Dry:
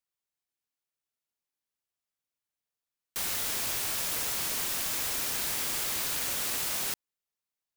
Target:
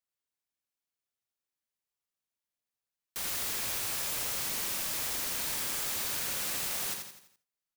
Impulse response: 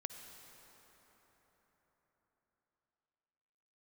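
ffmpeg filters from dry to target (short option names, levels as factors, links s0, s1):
-filter_complex "[0:a]aecho=1:1:84|168|252|336|420:0.531|0.239|0.108|0.0484|0.0218[s0];[1:a]atrim=start_sample=2205,atrim=end_sample=3969[s1];[s0][s1]afir=irnorm=-1:irlink=0"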